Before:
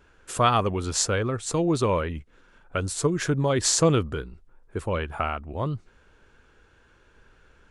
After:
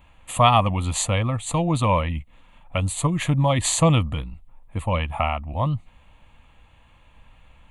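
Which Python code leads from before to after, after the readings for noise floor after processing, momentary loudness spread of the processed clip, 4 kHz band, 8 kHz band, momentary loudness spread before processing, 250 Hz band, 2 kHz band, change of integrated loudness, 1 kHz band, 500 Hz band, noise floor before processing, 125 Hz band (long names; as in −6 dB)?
−55 dBFS, 13 LU, +2.0 dB, 0.0 dB, 14 LU, +2.0 dB, +2.5 dB, +3.0 dB, +5.0 dB, −0.5 dB, −59 dBFS, +6.0 dB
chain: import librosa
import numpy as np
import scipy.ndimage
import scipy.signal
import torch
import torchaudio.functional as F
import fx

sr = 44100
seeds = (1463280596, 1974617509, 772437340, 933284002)

y = fx.fixed_phaser(x, sr, hz=1500.0, stages=6)
y = y * 10.0 ** (7.5 / 20.0)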